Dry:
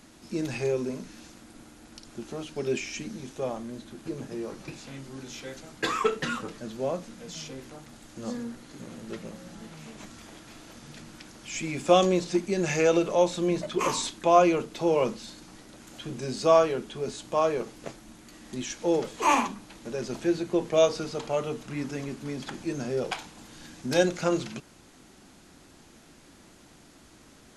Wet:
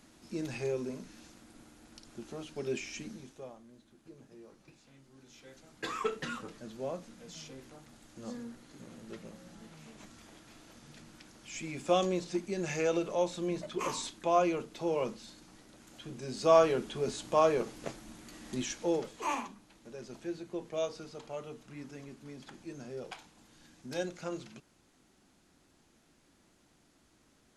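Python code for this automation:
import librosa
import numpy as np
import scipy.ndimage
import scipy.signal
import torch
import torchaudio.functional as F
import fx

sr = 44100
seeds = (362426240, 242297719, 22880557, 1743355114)

y = fx.gain(x, sr, db=fx.line((3.1, -6.5), (3.58, -18.5), (5.09, -18.5), (6.03, -8.0), (16.24, -8.0), (16.68, -1.0), (18.59, -1.0), (19.4, -13.0)))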